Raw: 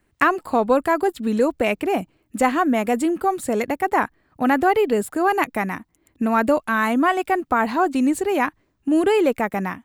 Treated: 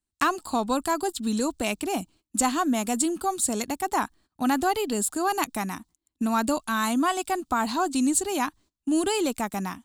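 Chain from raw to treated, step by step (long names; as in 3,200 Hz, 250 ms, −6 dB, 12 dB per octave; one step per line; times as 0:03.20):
noise gate −47 dBFS, range −19 dB
graphic EQ with 10 bands 125 Hz −8 dB, 500 Hz −12 dB, 2,000 Hz −12 dB, 4,000 Hz +7 dB, 8,000 Hz +10 dB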